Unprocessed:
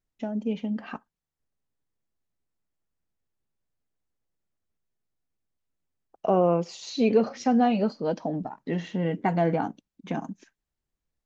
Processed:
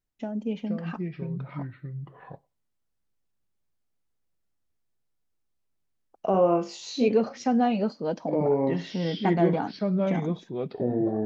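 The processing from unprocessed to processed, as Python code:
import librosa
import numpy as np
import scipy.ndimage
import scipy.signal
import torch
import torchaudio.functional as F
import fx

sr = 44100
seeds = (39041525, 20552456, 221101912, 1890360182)

y = fx.room_flutter(x, sr, wall_m=3.5, rt60_s=0.27, at=(6.32, 7.08))
y = fx.echo_pitch(y, sr, ms=413, semitones=-4, count=2, db_per_echo=-3.0)
y = y * librosa.db_to_amplitude(-1.5)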